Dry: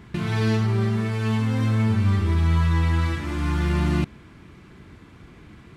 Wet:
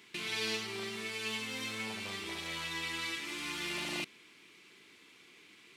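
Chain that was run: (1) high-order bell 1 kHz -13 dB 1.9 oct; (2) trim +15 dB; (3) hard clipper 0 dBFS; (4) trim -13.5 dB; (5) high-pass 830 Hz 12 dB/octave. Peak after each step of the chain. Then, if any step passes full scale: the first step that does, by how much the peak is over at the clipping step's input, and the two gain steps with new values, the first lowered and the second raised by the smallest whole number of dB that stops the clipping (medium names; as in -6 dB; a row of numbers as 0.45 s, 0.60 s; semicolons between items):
-11.0 dBFS, +4.0 dBFS, 0.0 dBFS, -13.5 dBFS, -23.0 dBFS; step 2, 4.0 dB; step 2 +11 dB, step 4 -9.5 dB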